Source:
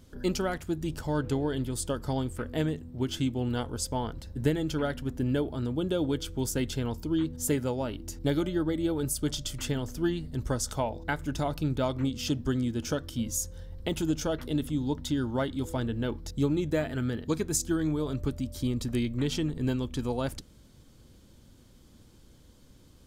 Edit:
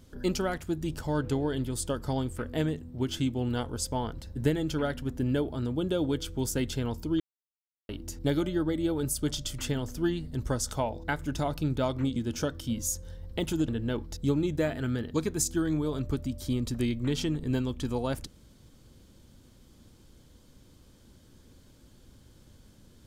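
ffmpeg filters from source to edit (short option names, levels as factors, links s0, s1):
-filter_complex "[0:a]asplit=5[s0][s1][s2][s3][s4];[s0]atrim=end=7.2,asetpts=PTS-STARTPTS,afade=t=out:st=7.196:d=0.004:c=hsin[s5];[s1]atrim=start=7.2:end=7.89,asetpts=PTS-STARTPTS,volume=0[s6];[s2]atrim=start=7.89:end=12.162,asetpts=PTS-STARTPTS,afade=t=in:d=0.004:c=hsin[s7];[s3]atrim=start=12.648:end=14.172[s8];[s4]atrim=start=15.818[s9];[s5][s6][s7]concat=n=3:v=0:a=1[s10];[s10][s8]acrossfade=d=0.004:c1=hsin:c2=hsin[s11];[s11][s9]acrossfade=d=0.004:c1=hsin:c2=hsin"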